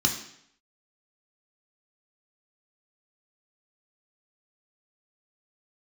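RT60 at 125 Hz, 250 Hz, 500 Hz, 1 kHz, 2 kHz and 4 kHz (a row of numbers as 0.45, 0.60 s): 0.70, 0.70, 0.70, 0.70, 0.70, 0.70 s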